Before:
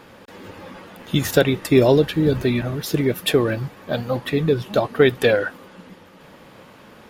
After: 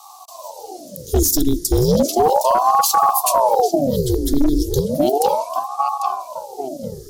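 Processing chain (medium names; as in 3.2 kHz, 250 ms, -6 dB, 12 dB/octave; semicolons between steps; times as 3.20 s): elliptic band-stop 190–5600 Hz, stop band 40 dB; on a send: filtered feedback delay 796 ms, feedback 40%, low-pass 2 kHz, level -4 dB; on the sum: overload inside the chain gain 19.5 dB; bass shelf 180 Hz -9.5 dB; loudness maximiser +23.5 dB; ring modulator with a swept carrier 560 Hz, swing 75%, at 0.34 Hz; trim -3.5 dB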